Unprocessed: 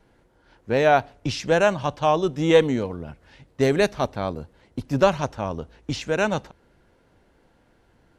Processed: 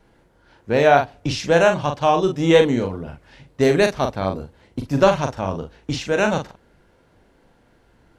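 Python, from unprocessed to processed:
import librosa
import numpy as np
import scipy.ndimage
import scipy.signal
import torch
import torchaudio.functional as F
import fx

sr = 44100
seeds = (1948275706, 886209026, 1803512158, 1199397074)

y = fx.doubler(x, sr, ms=42.0, db=-6.0)
y = F.gain(torch.from_numpy(y), 2.5).numpy()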